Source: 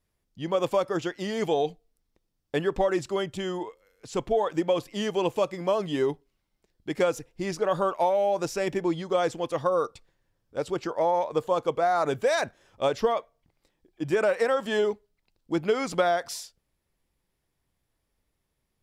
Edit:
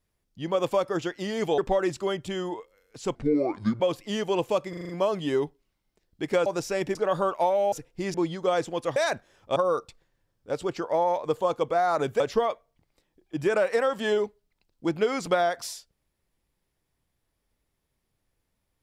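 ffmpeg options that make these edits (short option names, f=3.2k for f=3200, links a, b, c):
-filter_complex "[0:a]asplit=16[a][b][c][d][e][f][g][h][i][j][k][l][m][n][o][p];[a]atrim=end=1.582[q];[b]atrim=start=2.668:end=4.244[r];[c]atrim=start=4.24:end=4.67,asetpts=PTS-STARTPTS,asetrate=29106,aresample=44100[s];[d]atrim=start=4.666:end=5.602[t];[e]atrim=start=5.558:end=5.602[u];[f]atrim=start=5.558:end=5.602[v];[g]atrim=start=5.558:end=5.602[w];[h]atrim=start=5.558:end=5.602[x];[i]atrim=start=5.558:end=7.132[y];[j]atrim=start=8.318:end=8.812[z];[k]atrim=start=7.548:end=8.322[aa];[l]atrim=start=7.128:end=7.552[ab];[m]atrim=start=8.808:end=9.632[ac];[n]atrim=start=12.268:end=12.872[ad];[o]atrim=start=9.628:end=12.272[ae];[p]atrim=start=12.868[af];[q][r]acrossfade=d=0.004:c1=hsin:c2=hsin[ag];[ag][s]acrossfade=d=0.004:c1=hsin:c2=hsin[ah];[ah][t]acrossfade=d=0.004:c1=hsin:c2=hsin[ai];[ai][u]acrossfade=d=0.004:c1=hsin:c2=hsin[aj];[aj][v]acrossfade=d=0.004:c1=hsin:c2=hsin[ak];[ak][w]acrossfade=d=0.004:c1=hsin:c2=hsin[al];[al][x]acrossfade=d=0.004:c1=hsin:c2=hsin[am];[am][y]acrossfade=d=0.004:c1=hsin:c2=hsin[an];[an][z]acrossfade=d=0.004:c1=hsin:c2=hsin[ao];[ao][aa]acrossfade=d=0.004:c1=hsin:c2=hsin[ap];[ap][ab]acrossfade=d=0.004:c1=hsin:c2=hsin[aq];[aq][ac]acrossfade=d=0.004:c1=hsin:c2=hsin[ar];[ar][ad]acrossfade=d=0.004:c1=hsin:c2=hsin[as];[as][ae]acrossfade=d=0.004:c1=hsin:c2=hsin[at];[at][af]acrossfade=d=0.004:c1=hsin:c2=hsin"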